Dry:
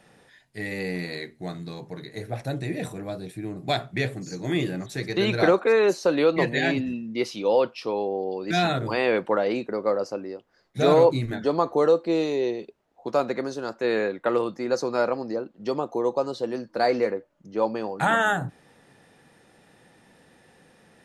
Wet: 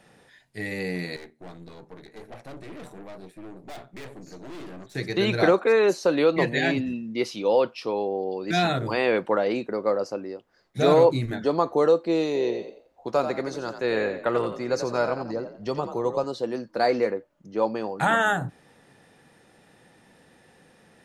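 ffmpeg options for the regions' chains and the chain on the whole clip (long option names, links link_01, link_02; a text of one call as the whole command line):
ffmpeg -i in.wav -filter_complex "[0:a]asettb=1/sr,asplit=3[link_01][link_02][link_03];[link_01]atrim=end=1.164[link_04];[link_02]atrim=start=1.16:end=4.95,asetpts=PTS-STARTPTS,afade=type=in:duration=0.004:curve=qsin,afade=type=out:start_time=3.786:duration=0.004:curve=qsin,highpass=200,highshelf=frequency=2000:gain=-7,aeval=exprs='(tanh(79.4*val(0)+0.8)-tanh(0.8))/79.4':channel_layout=same[link_05];[link_03]atrim=start=4.946[link_06];[link_04][link_05]acrossfade=duration=0.004:curve1=hsin:curve2=qsin[link_07];[link_07][link_06]acrossfade=duration=0.004:curve1=qsin:curve2=hsin,asettb=1/sr,asplit=3[link_08][link_09][link_10];[link_08]atrim=end=12.264[link_11];[link_09]atrim=start=12.26:end=16.24,asetpts=PTS-STARTPTS,afade=type=in:duration=0.004:curve=qsin,afade=type=out:start_time=3.976:duration=0.004:curve=qsin,asubboost=boost=5.5:cutoff=120,asplit=5[link_12][link_13][link_14][link_15][link_16];[link_13]adelay=87,afreqshift=44,volume=-9dB[link_17];[link_14]adelay=174,afreqshift=88,volume=-19.2dB[link_18];[link_15]adelay=261,afreqshift=132,volume=-29.3dB[link_19];[link_16]adelay=348,afreqshift=176,volume=-39.5dB[link_20];[link_12][link_17][link_18][link_19][link_20]amix=inputs=5:normalize=0,atrim=end_sample=175518[link_21];[link_10]atrim=start=16.236[link_22];[link_11][link_21]acrossfade=duration=0.004:curve1=hsin:curve2=qsin[link_23];[link_23][link_22]acrossfade=duration=0.004:curve1=qsin:curve2=hsin" out.wav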